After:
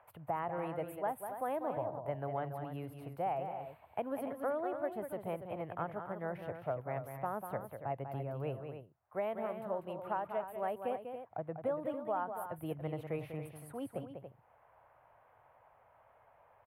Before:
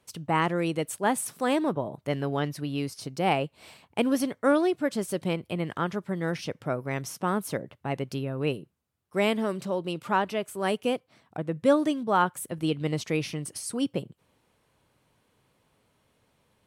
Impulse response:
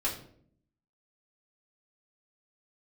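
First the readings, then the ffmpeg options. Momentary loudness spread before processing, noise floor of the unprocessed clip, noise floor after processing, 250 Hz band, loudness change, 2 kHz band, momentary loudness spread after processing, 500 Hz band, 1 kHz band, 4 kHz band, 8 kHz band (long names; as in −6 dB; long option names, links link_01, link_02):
9 LU, −70 dBFS, −66 dBFS, −16.0 dB, −11.0 dB, −16.0 dB, 8 LU, −9.0 dB, −8.5 dB, below −20 dB, below −20 dB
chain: -filter_complex "[0:a]acrossover=split=250|580|2700[link_01][link_02][link_03][link_04];[link_03]acompressor=mode=upward:threshold=-45dB:ratio=2.5[link_05];[link_01][link_02][link_05][link_04]amix=inputs=4:normalize=0,firequalizer=gain_entry='entry(110,0);entry(180,-11);entry(380,-7);entry(670,7);entry(1100,-1);entry(5500,-25);entry(12000,10)':delay=0.05:min_phase=1,acompressor=threshold=-25dB:ratio=6,bass=frequency=250:gain=3,treble=frequency=4000:gain=-13,aecho=1:1:195.3|282.8:0.398|0.316,volume=-7.5dB"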